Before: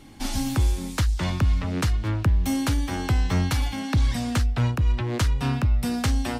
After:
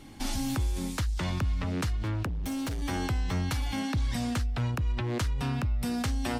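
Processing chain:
in parallel at −2 dB: compressor whose output falls as the input rises −29 dBFS, ratio −1
0:02.26–0:02.82: on the sum: hard clipping −21 dBFS, distortion −17 dB
level −9 dB

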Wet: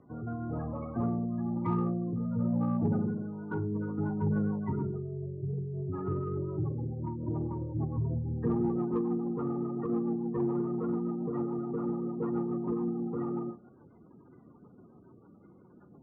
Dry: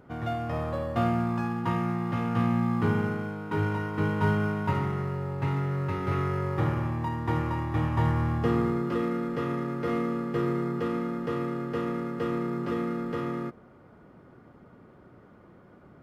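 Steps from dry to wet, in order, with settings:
each half-wave held at its own peak
elliptic low-pass filter 2,400 Hz, stop band 60 dB
gate on every frequency bin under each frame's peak −15 dB strong
high-pass filter 270 Hz 6 dB per octave
parametric band 600 Hz −10 dB 0.65 octaves
four-comb reverb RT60 0.36 s, combs from 31 ms, DRR 10.5 dB
rotating-speaker cabinet horn 1 Hz, later 7 Hz, at 0:03.33
in parallel at −8.5 dB: soft clipping −29 dBFS, distortion −12 dB
on the sum: dynamic equaliser 1,000 Hz, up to −4 dB, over −52 dBFS, Q 3.6
level −2 dB

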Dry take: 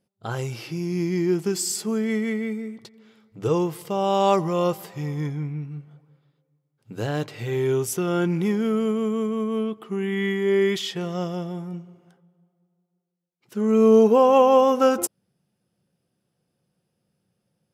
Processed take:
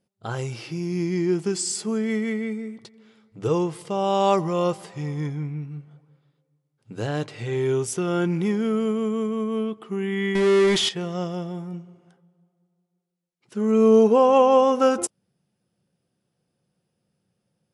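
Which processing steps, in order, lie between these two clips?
0:10.35–0:10.89: power curve on the samples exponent 0.5
MP3 112 kbit/s 24,000 Hz

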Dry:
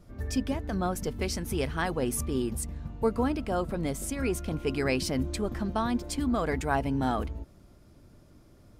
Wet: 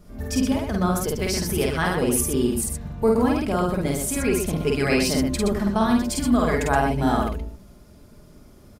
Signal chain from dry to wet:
high-shelf EQ 9,800 Hz +6 dB
comb filter 4.8 ms, depth 32%
loudspeakers that aren't time-aligned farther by 17 metres −1 dB, 42 metres −5 dB
level +4 dB

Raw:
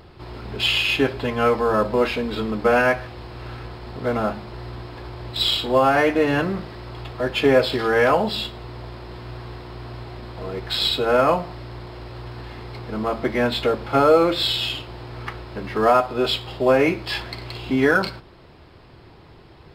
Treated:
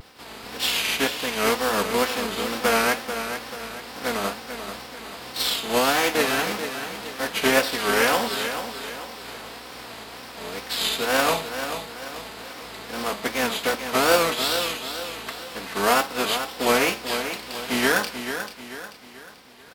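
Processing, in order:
compressing power law on the bin magnitudes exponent 0.51
high-pass filter 210 Hz 6 dB per octave
comb filter 4.2 ms, depth 49%
tape wow and flutter 140 cents
on a send: repeating echo 438 ms, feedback 43%, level −9 dB
on the sum: level −4 dB

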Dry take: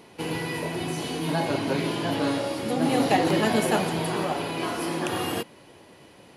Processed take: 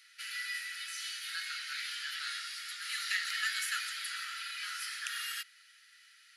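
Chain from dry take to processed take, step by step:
Chebyshev high-pass with heavy ripple 1,300 Hz, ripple 6 dB

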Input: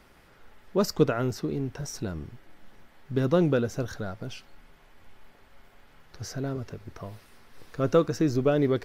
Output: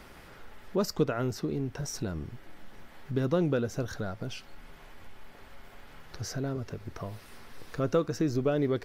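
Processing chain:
downward compressor 1.5 to 1, threshold −50 dBFS, peak gain reduction 12.5 dB
level +6.5 dB

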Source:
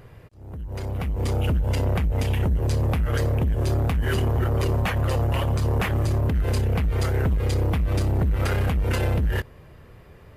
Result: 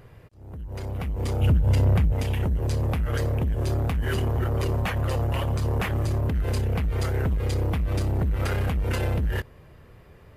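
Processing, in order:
0:01.41–0:02.14: parametric band 110 Hz +7.5 dB 1.9 octaves
level −2.5 dB

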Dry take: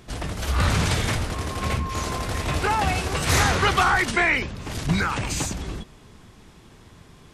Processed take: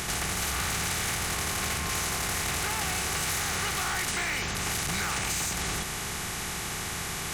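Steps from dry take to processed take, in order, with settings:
compressor on every frequency bin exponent 0.4
in parallel at −8.5 dB: wave folding −15.5 dBFS
on the sum: first-order pre-emphasis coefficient 0.8
downward compressor, threshold −26 dBFS, peak gain reduction 7.5 dB
soft clipping −19.5 dBFS, distortion −24 dB

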